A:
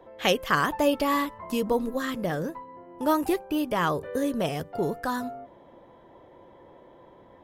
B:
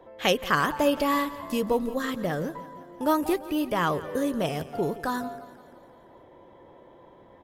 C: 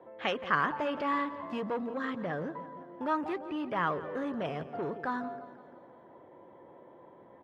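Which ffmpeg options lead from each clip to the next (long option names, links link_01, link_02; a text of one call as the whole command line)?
ffmpeg -i in.wav -af "aecho=1:1:171|342|513|684|855|1026:0.141|0.0833|0.0492|0.029|0.0171|0.0101" out.wav
ffmpeg -i in.wav -filter_complex "[0:a]acrossover=split=940[link_01][link_02];[link_01]asoftclip=type=tanh:threshold=-30dB[link_03];[link_03][link_02]amix=inputs=2:normalize=0,highpass=130,lowpass=2000,volume=-2dB" out.wav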